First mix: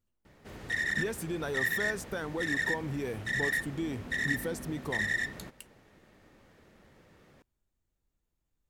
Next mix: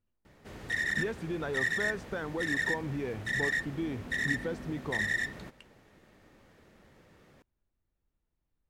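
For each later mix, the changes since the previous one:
speech: add low-pass filter 3,100 Hz 12 dB per octave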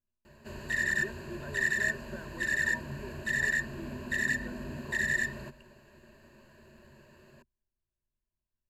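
speech −12.0 dB
master: add EQ curve with evenly spaced ripples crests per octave 1.4, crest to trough 15 dB

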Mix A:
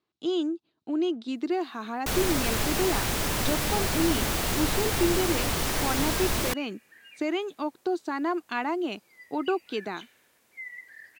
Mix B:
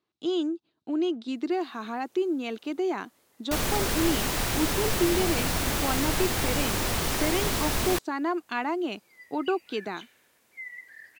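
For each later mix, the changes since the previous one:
first sound: entry +1.45 s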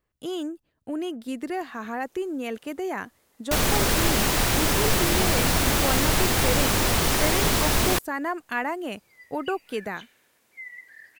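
speech: remove loudspeaker in its box 200–6,300 Hz, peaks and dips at 340 Hz +7 dB, 530 Hz −9 dB, 1,800 Hz −8 dB, 3,900 Hz +9 dB
first sound +5.5 dB

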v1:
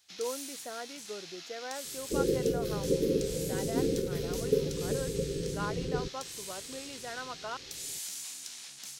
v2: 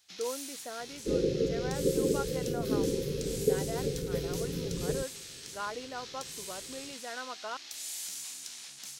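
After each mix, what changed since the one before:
second sound: entry −1.05 s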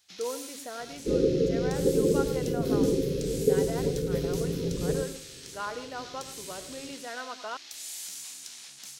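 reverb: on, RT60 0.35 s

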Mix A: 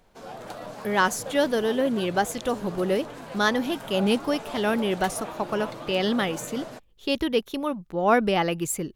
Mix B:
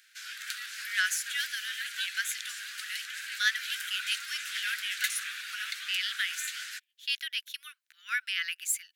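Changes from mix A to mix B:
background +10.5 dB
master: add Butterworth high-pass 1,500 Hz 72 dB per octave

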